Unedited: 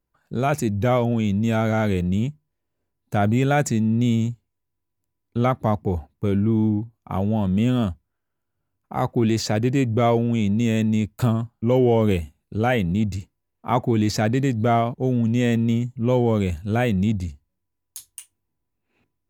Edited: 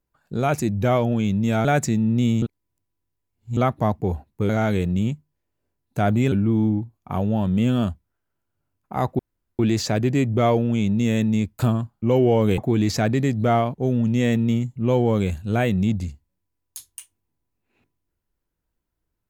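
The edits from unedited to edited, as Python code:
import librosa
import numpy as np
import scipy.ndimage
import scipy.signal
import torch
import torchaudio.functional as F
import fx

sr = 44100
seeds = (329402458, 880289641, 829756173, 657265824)

y = fx.edit(x, sr, fx.move(start_s=1.65, length_s=1.83, to_s=6.32),
    fx.reverse_span(start_s=4.25, length_s=1.15),
    fx.insert_room_tone(at_s=9.19, length_s=0.4),
    fx.cut(start_s=12.18, length_s=1.6), tone=tone)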